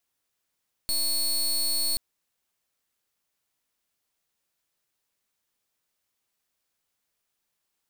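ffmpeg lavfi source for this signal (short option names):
-f lavfi -i "aevalsrc='0.0531*(2*lt(mod(4380*t,1),0.22)-1)':d=1.08:s=44100"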